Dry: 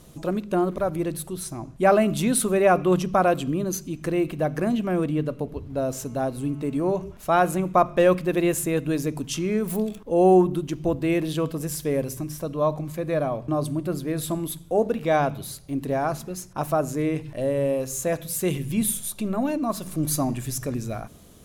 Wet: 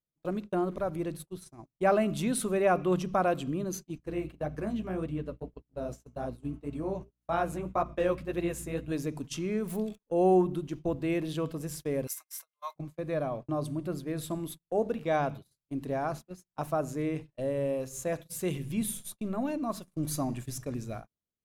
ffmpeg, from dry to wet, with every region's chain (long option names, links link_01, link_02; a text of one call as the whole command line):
ffmpeg -i in.wav -filter_complex "[0:a]asettb=1/sr,asplit=3[link_01][link_02][link_03];[link_01]atrim=end=3.984[link_04];[link_02]atrim=start=3.98:end=8.92,asetpts=PTS-STARTPTS,afade=type=in:duration=0.004:curve=qsin,afade=type=out:start_time=4.936:duration=0.004:curve=qsin,flanger=delay=4.6:depth=9.5:regen=-15:speed=1.8:shape=triangular,aeval=exprs='val(0)+0.0126*(sin(2*PI*60*n/s)+sin(2*PI*2*60*n/s)/2+sin(2*PI*3*60*n/s)/3+sin(2*PI*4*60*n/s)/4+sin(2*PI*5*60*n/s)/5)':channel_layout=same[link_05];[link_03]atrim=start=8.916[link_06];[link_04][link_05]acrossfade=duration=0.004:curve1=hsin:curve2=qsin[link_07];[link_07][link_06]acrossfade=duration=0.004:curve1=qsin:curve2=hsin,asettb=1/sr,asplit=3[link_08][link_09][link_10];[link_08]atrim=end=12.074[link_11];[link_09]atrim=start=12.07:end=12.76,asetpts=PTS-STARTPTS,afade=type=in:duration=0.004:curve=qsin,afade=type=out:start_time=0.686:duration=0.004:curve=qsin,highpass=frequency=1000:width=0.5412,highpass=frequency=1000:width=1.3066,aemphasis=mode=production:type=50kf,aeval=exprs='val(0)+0.00158*sin(2*PI*2100*n/s)':channel_layout=same[link_12];[link_10]atrim=start=12.756[link_13];[link_11][link_12]acrossfade=duration=0.004:curve1=hsin:curve2=qsin[link_14];[link_14][link_13]acrossfade=duration=0.004:curve1=qsin:curve2=hsin,agate=range=-40dB:threshold=-31dB:ratio=16:detection=peak,highshelf=frequency=9500:gain=-6.5,volume=-7dB" out.wav